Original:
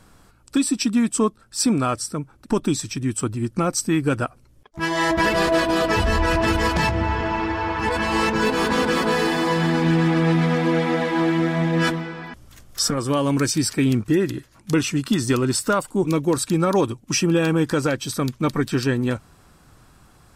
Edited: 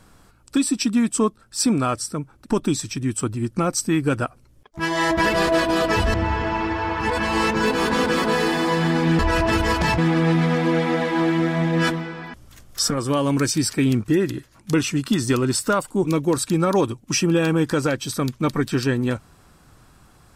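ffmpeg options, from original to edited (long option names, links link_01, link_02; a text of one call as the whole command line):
ffmpeg -i in.wav -filter_complex "[0:a]asplit=4[link_01][link_02][link_03][link_04];[link_01]atrim=end=6.142[link_05];[link_02]atrim=start=6.928:end=9.982[link_06];[link_03]atrim=start=6.138:end=6.932[link_07];[link_04]atrim=start=9.978[link_08];[link_05][link_06]acrossfade=duration=0.004:curve1=hsin:curve2=hsin[link_09];[link_09][link_07]acrossfade=duration=0.004:curve1=hsin:curve2=hsin[link_10];[link_10][link_08]acrossfade=duration=0.004:curve1=hsin:curve2=hsin" out.wav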